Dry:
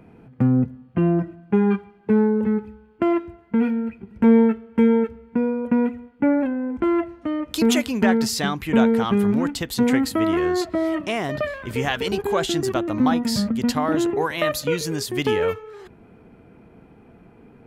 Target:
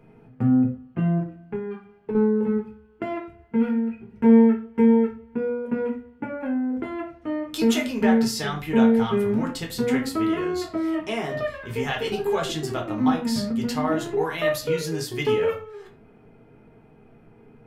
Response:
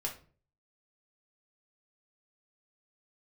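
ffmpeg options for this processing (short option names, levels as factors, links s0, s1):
-filter_complex "[0:a]asettb=1/sr,asplit=3[s0][s1][s2];[s0]atrim=end=1.184[s3];[s1]atrim=start=1.18:end=2.15,asetpts=PTS-STARTPTS,afade=t=in:d=0.004:c=qsin,afade=t=out:st=0.966:d=0.004:c=qsin,acompressor=threshold=0.0631:ratio=10[s4];[s2]atrim=start=2.146[s5];[s3][s4]acrossfade=d=0.004:c1=hsin:c2=qsin[s6];[s6][s5]acrossfade=d=0.004:c1=qsin:c2=hsin[s7];[1:a]atrim=start_sample=2205,afade=t=out:st=0.2:d=0.01,atrim=end_sample=9261[s8];[s7][s8]afir=irnorm=-1:irlink=0,volume=0.596"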